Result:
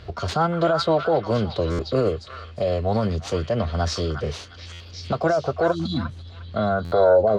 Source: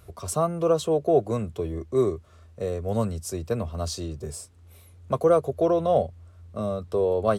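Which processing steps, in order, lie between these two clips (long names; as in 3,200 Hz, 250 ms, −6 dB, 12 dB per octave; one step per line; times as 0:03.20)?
running median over 5 samples
healed spectral selection 0:05.74–0:06.44, 330–2,500 Hz after
in parallel at 0 dB: downward compressor, threshold −35 dBFS, peak gain reduction 19 dB
on the sum: brickwall limiter −16.5 dBFS, peak gain reduction 9 dB
low-pass filter sweep 3,500 Hz → 490 Hz, 0:06.40–0:07.18
formants moved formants +3 semitones
on a send: echo through a band-pass that steps 355 ms, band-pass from 1,600 Hz, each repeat 0.7 octaves, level −2 dB
on the sum: buffer that repeats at 0:01.71/0:04.72/0:06.84, samples 512, times 6
level +4 dB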